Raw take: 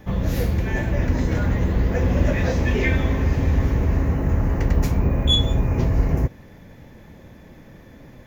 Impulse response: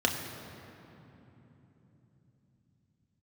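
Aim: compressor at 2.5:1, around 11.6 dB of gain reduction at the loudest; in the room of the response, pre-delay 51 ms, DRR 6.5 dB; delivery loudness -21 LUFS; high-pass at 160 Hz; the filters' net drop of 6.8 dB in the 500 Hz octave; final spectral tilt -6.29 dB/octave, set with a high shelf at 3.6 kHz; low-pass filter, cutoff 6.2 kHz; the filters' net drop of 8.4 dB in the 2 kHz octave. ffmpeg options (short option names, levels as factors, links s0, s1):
-filter_complex "[0:a]highpass=160,lowpass=6200,equalizer=f=500:t=o:g=-8,equalizer=f=2000:t=o:g=-8,highshelf=f=3600:g=-6,acompressor=threshold=0.01:ratio=2.5,asplit=2[s0][s1];[1:a]atrim=start_sample=2205,adelay=51[s2];[s1][s2]afir=irnorm=-1:irlink=0,volume=0.133[s3];[s0][s3]amix=inputs=2:normalize=0,volume=7.08"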